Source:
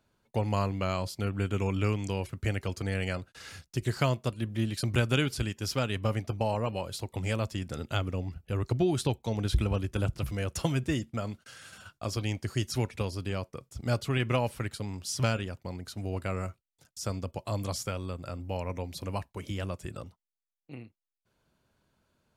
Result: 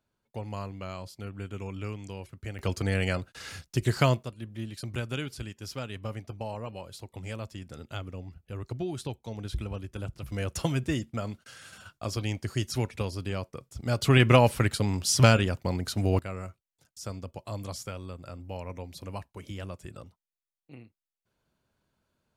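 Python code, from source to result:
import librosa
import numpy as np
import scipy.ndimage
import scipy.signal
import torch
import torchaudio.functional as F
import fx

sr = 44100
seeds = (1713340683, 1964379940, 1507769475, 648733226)

y = fx.gain(x, sr, db=fx.steps((0.0, -8.0), (2.59, 4.0), (4.23, -7.0), (10.32, 0.5), (14.02, 9.0), (16.19, -4.0)))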